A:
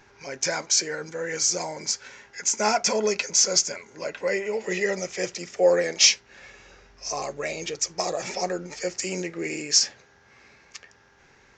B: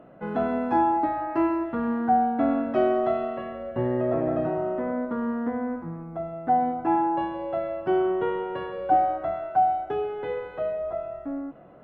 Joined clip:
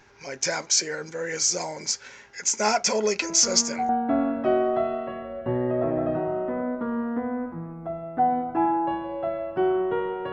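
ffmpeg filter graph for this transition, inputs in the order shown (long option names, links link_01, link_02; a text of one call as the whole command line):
ffmpeg -i cue0.wav -i cue1.wav -filter_complex "[1:a]asplit=2[link_01][link_02];[0:a]apad=whole_dur=10.32,atrim=end=10.32,atrim=end=3.892[link_03];[link_02]atrim=start=2.188:end=8.62[link_04];[link_01]atrim=start=1.52:end=2.19,asetpts=PTS-STARTPTS,volume=-6.5dB,afade=type=in:duration=0.004:curve=hsin,afade=type=out:start_time=0.666:duration=0.004:curve=hsin,adelay=3220[link_05];[link_03][link_04]acrossfade=duration=0.004:curve1=hsin:curve2=hsin[link_06];[link_06][link_05]amix=inputs=2:normalize=0" out.wav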